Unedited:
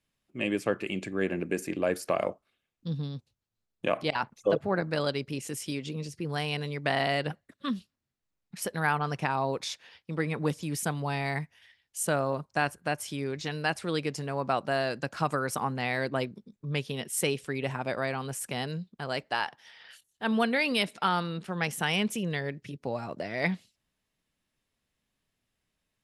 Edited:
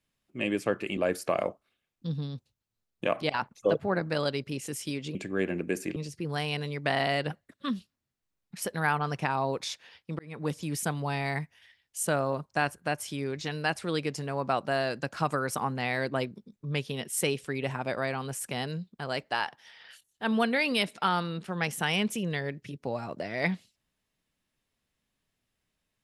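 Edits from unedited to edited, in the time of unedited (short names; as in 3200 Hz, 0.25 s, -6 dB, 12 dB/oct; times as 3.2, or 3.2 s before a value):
0.97–1.78 move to 5.96
10.19–10.58 fade in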